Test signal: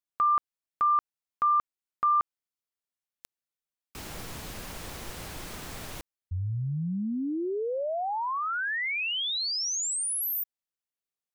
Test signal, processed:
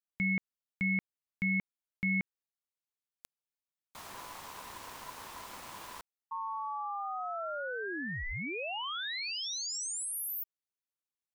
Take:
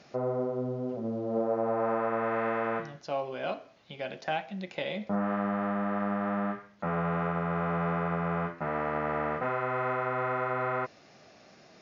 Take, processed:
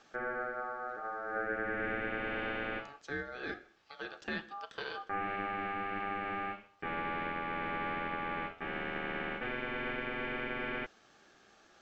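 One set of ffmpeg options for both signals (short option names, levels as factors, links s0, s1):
-af "aeval=exprs='val(0)*sin(2*PI*1000*n/s)':c=same,volume=0.631"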